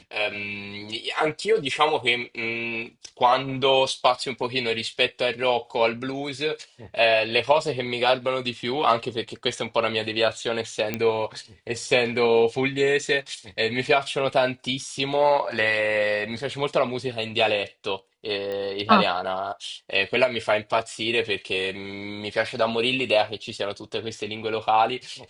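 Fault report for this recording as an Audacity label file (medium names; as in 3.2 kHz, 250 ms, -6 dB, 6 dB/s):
10.940000	10.940000	pop -11 dBFS
18.520000	18.520000	pop -21 dBFS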